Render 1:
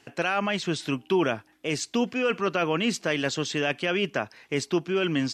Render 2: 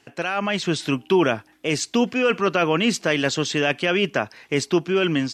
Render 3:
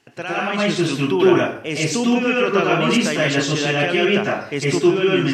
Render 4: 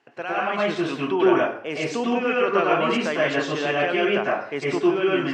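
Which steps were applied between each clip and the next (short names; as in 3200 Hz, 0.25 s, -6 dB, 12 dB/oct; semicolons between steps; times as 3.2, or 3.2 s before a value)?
AGC gain up to 5.5 dB
plate-style reverb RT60 0.51 s, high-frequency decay 0.75×, pre-delay 90 ms, DRR -5 dB; gain -3 dB
band-pass 870 Hz, Q 0.65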